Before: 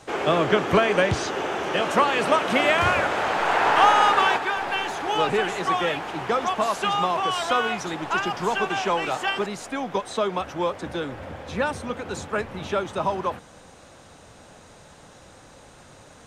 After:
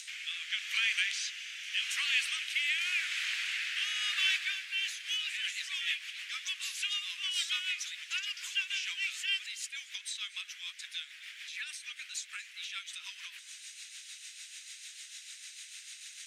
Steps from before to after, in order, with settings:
Butterworth high-pass 2,100 Hz 36 dB per octave
upward compression, threshold −36 dBFS
rotating-speaker cabinet horn 0.85 Hz, later 6.7 Hz, at 0:04.43
on a send: convolution reverb RT60 0.45 s, pre-delay 217 ms, DRR 18.5 dB
on the sum: level +1 dB

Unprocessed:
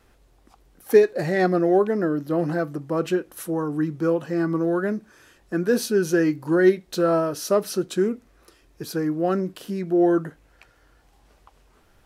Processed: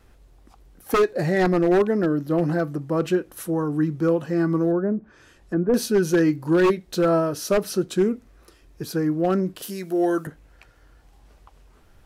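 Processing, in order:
0:09.62–0:10.27: RIAA equalisation recording
wave folding −13 dBFS
low-shelf EQ 170 Hz +7 dB
0:04.71–0:05.74: treble cut that deepens with the level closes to 850 Hz, closed at −21.5 dBFS

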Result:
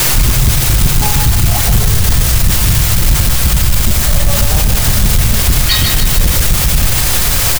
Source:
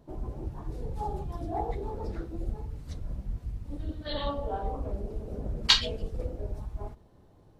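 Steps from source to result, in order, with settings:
time-frequency cells dropped at random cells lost 34%
low shelf with overshoot 180 Hz +13.5 dB, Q 3
comb filter 1.6 ms, depth 74%
in parallel at −1.5 dB: downward compressor, threshold −28 dBFS, peak gain reduction 20 dB
on the sum: tuned comb filter 210 Hz, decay 0.25 s, harmonics all, mix 80%
bit-depth reduction 6 bits, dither triangular
gain into a clipping stage and back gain 25 dB
echo with a time of its own for lows and highs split 320 Hz, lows 528 ms, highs 148 ms, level −7 dB
on a send at −8 dB: convolution reverb RT60 0.75 s, pre-delay 6 ms
on the sum: boost into a limiter +25 dB
level −1 dB

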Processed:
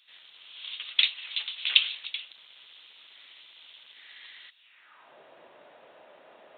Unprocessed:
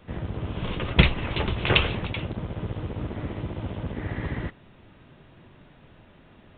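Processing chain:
high-pass filter sweep 3,800 Hz → 580 Hz, 0:04.55–0:05.18

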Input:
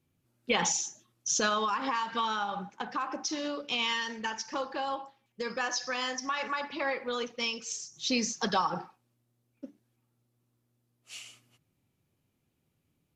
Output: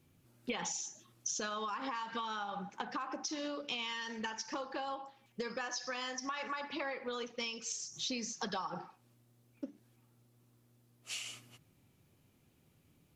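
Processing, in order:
downward compressor 5 to 1, threshold −46 dBFS, peak gain reduction 20.5 dB
level +7.5 dB

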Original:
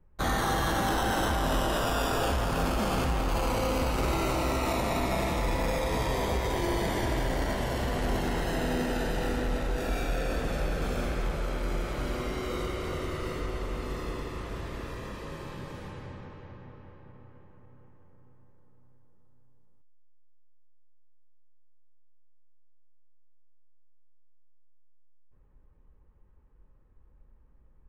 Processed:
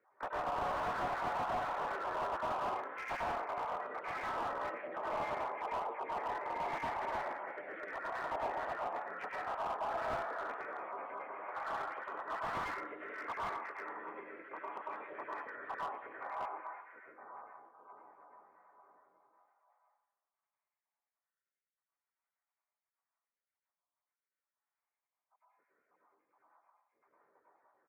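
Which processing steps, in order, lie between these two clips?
time-frequency cells dropped at random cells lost 74%
comb filter 0.9 ms, depth 42%
downward compressor 8 to 1, threshold −43 dBFS, peak gain reduction 19 dB
pitch-shifted copies added −7 semitones −15 dB, −4 semitones −7 dB, +4 semitones −9 dB
high-frequency loss of the air 180 metres
convolution reverb RT60 0.90 s, pre-delay 93 ms, DRR −4.5 dB
single-sideband voice off tune −64 Hz 590–2,200 Hz
slew-rate limiting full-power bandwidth 6.7 Hz
level +9 dB

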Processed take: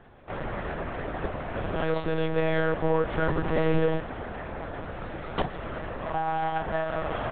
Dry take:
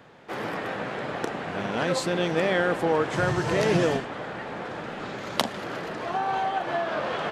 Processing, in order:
stylus tracing distortion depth 0.45 ms
high-shelf EQ 2,200 Hz −8.5 dB
one-pitch LPC vocoder at 8 kHz 160 Hz

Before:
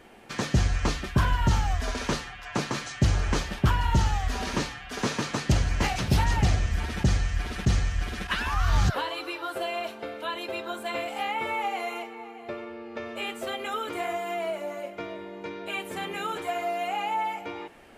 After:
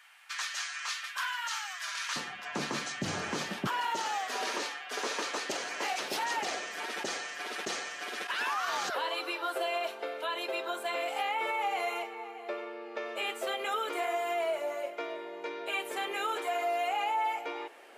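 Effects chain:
high-pass filter 1,200 Hz 24 dB per octave, from 0:02.16 170 Hz, from 0:03.67 370 Hz
brickwall limiter −23.5 dBFS, peak gain reduction 9.5 dB

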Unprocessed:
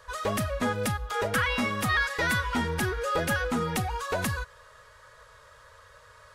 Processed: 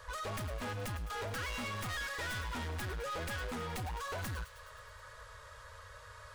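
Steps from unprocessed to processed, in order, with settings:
stylus tracing distortion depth 0.07 ms
drawn EQ curve 100 Hz 0 dB, 170 Hz −10 dB, 760 Hz −5 dB
in parallel at −1 dB: downward compressor, threshold −45 dBFS, peak gain reduction 17 dB
on the sum: soft clipping −37 dBFS, distortion −7 dB
delay with a high-pass on its return 105 ms, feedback 70%, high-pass 2,100 Hz, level −11.5 dB

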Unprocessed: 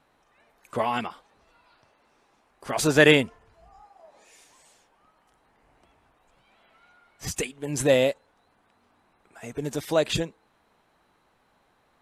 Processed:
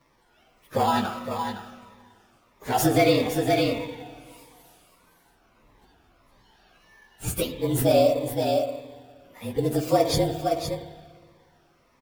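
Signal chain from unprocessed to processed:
partials spread apart or drawn together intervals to 112%
on a send: single-tap delay 512 ms −9 dB
on the sum: downward compressor 5 to 1, threshold −26 dBFS, peak gain reduction 11.5 dB
spring reverb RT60 1.8 s, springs 49/58 ms, chirp 40 ms, DRR 6.5 dB
dynamic equaliser 640 Hz, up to +5 dB, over −42 dBFS, Q 1.2
in parallel at −11.5 dB: decimation without filtering 11×
on the sum: phaser whose notches keep moving one way falling 1.6 Hz
level +6 dB

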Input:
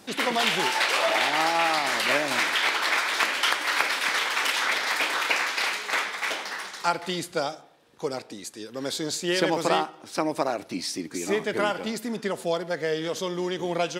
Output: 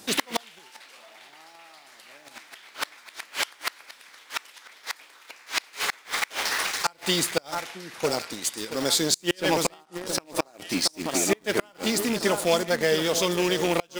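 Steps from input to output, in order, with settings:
loose part that buzzes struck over −33 dBFS, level −27 dBFS
0:09.31–0:09.74: tube saturation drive 16 dB, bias 0.3
high-shelf EQ 4,000 Hz +9 dB
delay that swaps between a low-pass and a high-pass 674 ms, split 1,500 Hz, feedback 60%, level −10.5 dB
in parallel at −5.5 dB: bit reduction 5 bits
on the sum: gate with flip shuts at −9 dBFS, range −32 dB

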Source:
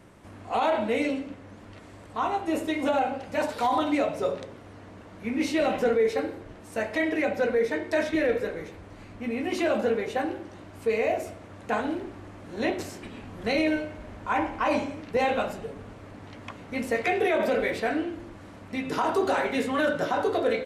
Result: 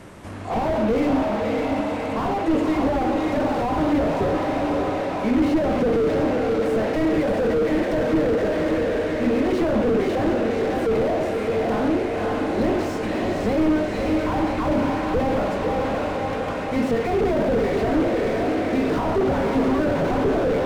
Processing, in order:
hum removal 57.87 Hz, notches 6
treble cut that deepens with the level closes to 2,400 Hz, closed at −20.5 dBFS
in parallel at −10 dB: sine wavefolder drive 8 dB, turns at −13.5 dBFS
on the sum: feedback delay with all-pass diffusion 575 ms, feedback 58%, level −5 dB
on a send at −22 dB: convolution reverb RT60 0.50 s, pre-delay 100 ms
on the sum: slew-rate limiting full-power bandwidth 35 Hz
level +4 dB

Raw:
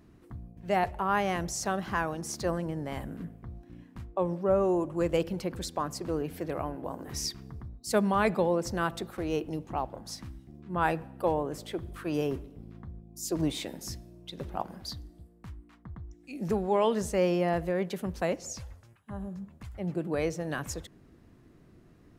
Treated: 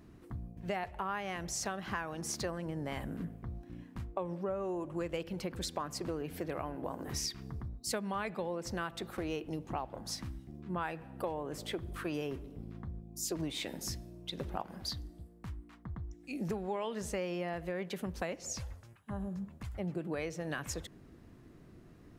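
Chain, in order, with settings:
dynamic equaliser 2,400 Hz, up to +6 dB, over −46 dBFS, Q 0.72
downward compressor 6 to 1, threshold −35 dBFS, peak gain reduction 16 dB
level +1 dB

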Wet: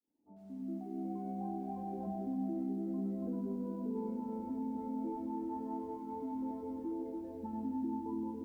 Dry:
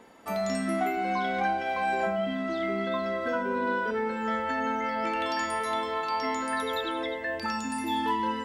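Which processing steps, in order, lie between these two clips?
fade in at the beginning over 1.97 s
formant resonators in series u
tilt shelving filter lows +7 dB, about 860 Hz
tuned comb filter 190 Hz, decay 0.72 s, harmonics all, mix 40%
feedback echo with a low-pass in the loop 284 ms, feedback 53%, low-pass 1,700 Hz, level −4.5 dB
reverb reduction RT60 0.53 s
0:02.99–0:05.56: mains-hum notches 50/100/150 Hz
brickwall limiter −35 dBFS, peak gain reduction 7.5 dB
feedback echo at a low word length 96 ms, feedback 80%, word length 12 bits, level −9.5 dB
level +3 dB

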